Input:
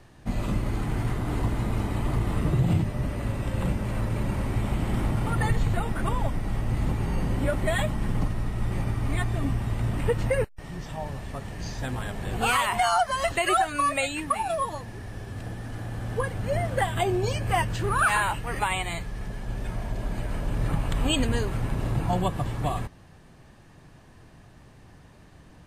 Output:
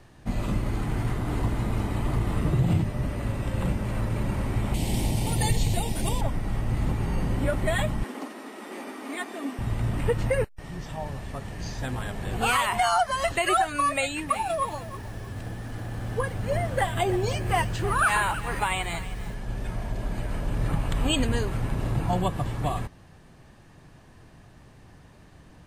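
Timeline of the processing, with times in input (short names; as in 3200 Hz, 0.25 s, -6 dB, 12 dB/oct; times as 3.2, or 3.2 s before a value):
4.74–6.21 EQ curve 890 Hz 0 dB, 1300 Hz -16 dB, 2300 Hz +3 dB, 4500 Hz +12 dB
8.04–9.59 Chebyshev high-pass 240 Hz, order 5
13.97–19.34 lo-fi delay 0.317 s, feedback 35%, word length 7-bit, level -14 dB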